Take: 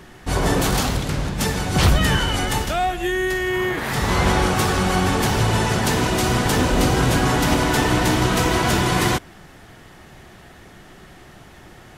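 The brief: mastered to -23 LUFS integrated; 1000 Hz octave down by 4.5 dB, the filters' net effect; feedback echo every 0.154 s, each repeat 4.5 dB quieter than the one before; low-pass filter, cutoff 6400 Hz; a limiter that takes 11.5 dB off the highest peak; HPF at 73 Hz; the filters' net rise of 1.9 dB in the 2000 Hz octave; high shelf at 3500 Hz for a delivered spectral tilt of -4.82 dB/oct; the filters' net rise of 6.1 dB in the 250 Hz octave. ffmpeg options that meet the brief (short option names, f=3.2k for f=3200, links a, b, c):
-af "highpass=73,lowpass=6.4k,equalizer=f=250:t=o:g=8.5,equalizer=f=1k:t=o:g=-8,equalizer=f=2k:t=o:g=3.5,highshelf=f=3.5k:g=5,alimiter=limit=-14dB:level=0:latency=1,aecho=1:1:154|308|462|616|770|924|1078|1232|1386:0.596|0.357|0.214|0.129|0.0772|0.0463|0.0278|0.0167|0.01,volume=-2.5dB"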